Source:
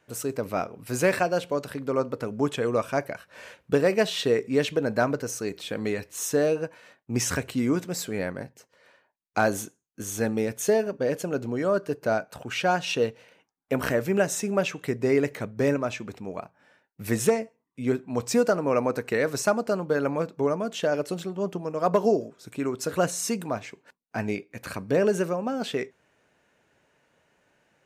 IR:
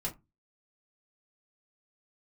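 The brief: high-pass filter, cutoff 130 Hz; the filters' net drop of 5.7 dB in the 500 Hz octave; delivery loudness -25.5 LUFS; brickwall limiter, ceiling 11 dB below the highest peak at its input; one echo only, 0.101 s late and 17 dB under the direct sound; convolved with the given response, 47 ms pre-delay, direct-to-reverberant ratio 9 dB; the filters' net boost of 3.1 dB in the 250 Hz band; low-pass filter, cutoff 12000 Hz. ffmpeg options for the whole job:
-filter_complex "[0:a]highpass=130,lowpass=12k,equalizer=f=250:t=o:g=6.5,equalizer=f=500:t=o:g=-9,alimiter=limit=-20.5dB:level=0:latency=1,aecho=1:1:101:0.141,asplit=2[a][b];[1:a]atrim=start_sample=2205,adelay=47[c];[b][c]afir=irnorm=-1:irlink=0,volume=-11dB[d];[a][d]amix=inputs=2:normalize=0,volume=5dB"

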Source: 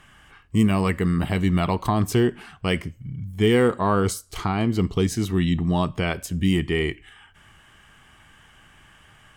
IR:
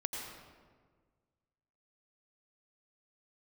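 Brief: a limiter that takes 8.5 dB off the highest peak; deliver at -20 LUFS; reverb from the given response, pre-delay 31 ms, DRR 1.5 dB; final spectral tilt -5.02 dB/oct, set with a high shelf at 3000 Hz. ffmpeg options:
-filter_complex "[0:a]highshelf=f=3k:g=8.5,alimiter=limit=-15dB:level=0:latency=1,asplit=2[a][b];[1:a]atrim=start_sample=2205,adelay=31[c];[b][c]afir=irnorm=-1:irlink=0,volume=-3.5dB[d];[a][d]amix=inputs=2:normalize=0,volume=4dB"

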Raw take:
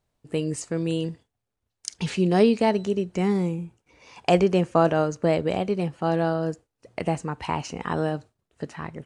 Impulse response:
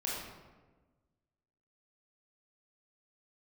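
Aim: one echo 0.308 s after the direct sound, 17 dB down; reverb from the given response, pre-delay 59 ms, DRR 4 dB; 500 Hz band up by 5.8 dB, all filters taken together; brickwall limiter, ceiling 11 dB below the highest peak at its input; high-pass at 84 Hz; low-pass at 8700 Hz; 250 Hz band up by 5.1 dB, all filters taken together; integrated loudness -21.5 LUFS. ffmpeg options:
-filter_complex "[0:a]highpass=84,lowpass=8.7k,equalizer=f=250:t=o:g=6,equalizer=f=500:t=o:g=5.5,alimiter=limit=-11.5dB:level=0:latency=1,aecho=1:1:308:0.141,asplit=2[a][b];[1:a]atrim=start_sample=2205,adelay=59[c];[b][c]afir=irnorm=-1:irlink=0,volume=-8dB[d];[a][d]amix=inputs=2:normalize=0,volume=1dB"

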